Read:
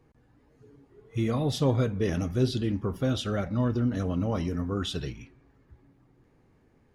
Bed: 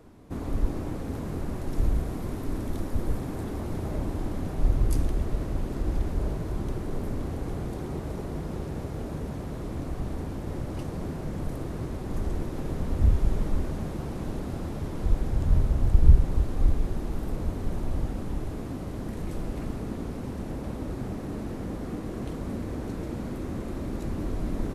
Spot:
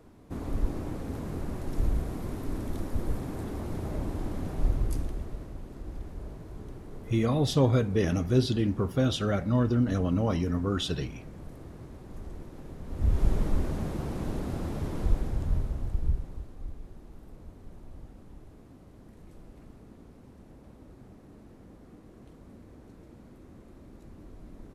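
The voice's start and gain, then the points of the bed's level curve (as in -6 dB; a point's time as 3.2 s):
5.95 s, +1.5 dB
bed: 4.62 s -2.5 dB
5.58 s -12 dB
12.82 s -12 dB
13.23 s 0 dB
14.98 s 0 dB
16.59 s -17.5 dB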